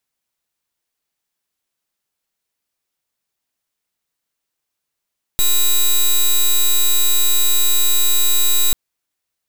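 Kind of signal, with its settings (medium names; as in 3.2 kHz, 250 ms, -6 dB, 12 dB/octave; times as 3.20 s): pulse 3.88 kHz, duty 10% -13 dBFS 3.34 s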